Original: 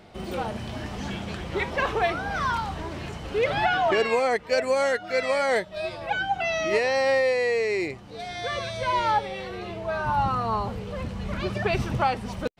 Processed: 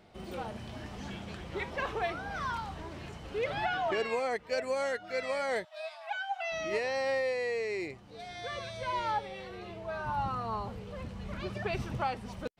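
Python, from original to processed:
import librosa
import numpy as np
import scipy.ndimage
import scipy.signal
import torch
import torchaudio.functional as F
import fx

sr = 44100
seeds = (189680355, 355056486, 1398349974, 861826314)

y = fx.brickwall_highpass(x, sr, low_hz=600.0, at=(5.65, 6.52))
y = F.gain(torch.from_numpy(y), -9.0).numpy()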